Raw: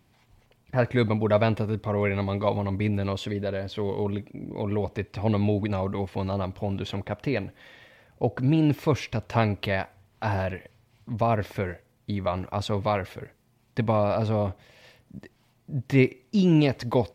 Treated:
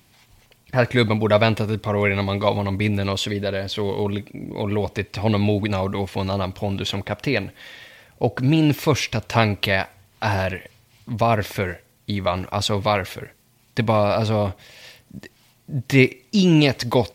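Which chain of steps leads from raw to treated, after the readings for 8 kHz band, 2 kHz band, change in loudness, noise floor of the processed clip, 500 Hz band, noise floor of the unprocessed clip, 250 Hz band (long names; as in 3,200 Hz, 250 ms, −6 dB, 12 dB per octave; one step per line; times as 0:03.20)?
can't be measured, +9.0 dB, +5.0 dB, −58 dBFS, +4.5 dB, −65 dBFS, +4.0 dB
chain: high-shelf EQ 2,200 Hz +11 dB
level +4 dB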